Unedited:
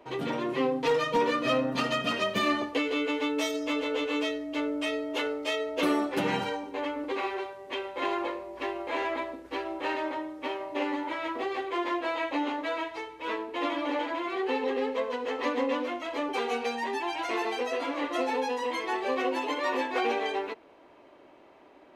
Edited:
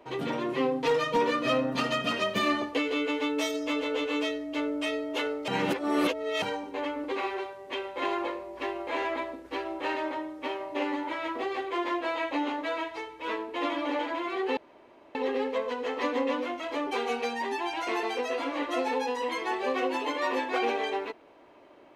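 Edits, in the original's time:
0:05.48–0:06.42: reverse
0:14.57: splice in room tone 0.58 s

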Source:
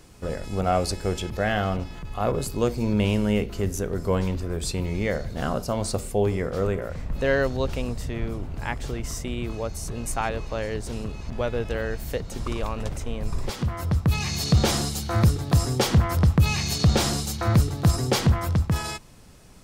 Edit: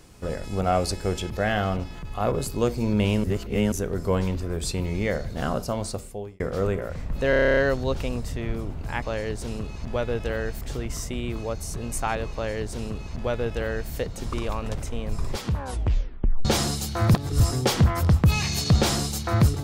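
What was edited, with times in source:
0:03.24–0:03.72: reverse
0:05.62–0:06.40: fade out
0:07.30: stutter 0.03 s, 10 plays
0:10.47–0:12.06: duplicate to 0:08.75
0:13.57: tape stop 1.02 s
0:15.28–0:15.54: reverse

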